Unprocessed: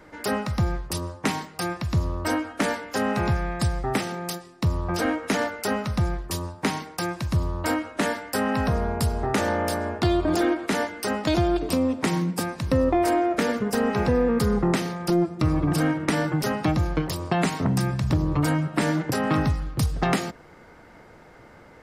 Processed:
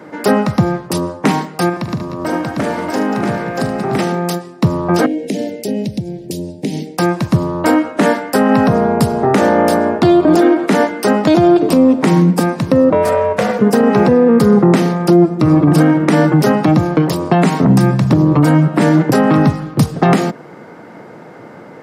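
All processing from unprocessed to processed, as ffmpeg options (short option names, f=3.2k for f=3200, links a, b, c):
-filter_complex "[0:a]asettb=1/sr,asplit=3[a][b][c];[a]atrim=end=1.694[d];[b]atrim=start=1.69:end=3.99,asetpts=PTS-STARTPTS,afade=t=in:d=0.004:c=qsin,afade=t=out:st=2.296:d=0.004:c=qsin,acompressor=threshold=-29dB:ratio=5:attack=3.2:release=140:knee=1:detection=peak,aeval=exprs='sgn(val(0))*max(abs(val(0))-0.00141,0)':c=same,aecho=1:1:43|76|187|319|635:0.282|0.237|0.316|0.178|0.708,atrim=end_sample=101430[e];[c]atrim=start=3.986[f];[d][e]acrossfade=d=0.004:c1=hsin:c2=qsin[g];[g][f]acrossfade=d=0.004:c1=qsin:c2=hsin,asettb=1/sr,asplit=3[h][i][j];[h]atrim=end=5.064[k];[i]atrim=start=5.06:end=6.98,asetpts=PTS-STARTPTS,afade=t=in:d=0.004:c=qsin,afade=t=out:st=1.916:d=0.004:c=qsin,asuperstop=centerf=1200:order=4:qfactor=0.51,acompressor=threshold=-30dB:ratio=5:attack=3.2:release=140:knee=1:detection=peak[l];[j]atrim=start=6.976[m];[k][l]acrossfade=d=0.004:c1=hsin:c2=qsin[n];[n][m]acrossfade=d=0.004:c1=qsin:c2=hsin,asettb=1/sr,asplit=3[o][p][q];[o]atrim=end=12.904[r];[p]atrim=start=12.9:end=13.59,asetpts=PTS-STARTPTS,afade=t=in:d=0.004:c=qsin,afade=t=out:st=0.686:d=0.004:c=qsin,equalizer=f=590:w=5.2:g=-13,aeval=exprs='val(0)*sin(2*PI*260*n/s)':c=same[s];[q]atrim=start=13.586[t];[r][s]acrossfade=d=0.004:c1=hsin:c2=qsin[u];[u][t]acrossfade=d=0.004:c1=qsin:c2=hsin,highpass=f=140:w=0.5412,highpass=f=140:w=1.3066,tiltshelf=f=1.2k:g=5,alimiter=level_in=12.5dB:limit=-1dB:release=50:level=0:latency=1,volume=-1dB"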